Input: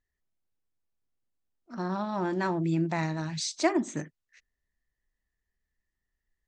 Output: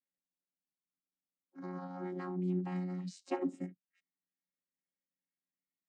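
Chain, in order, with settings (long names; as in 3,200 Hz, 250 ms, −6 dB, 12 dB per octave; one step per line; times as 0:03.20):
channel vocoder with a chord as carrier bare fifth, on E3
change of speed 1.1×
level −7.5 dB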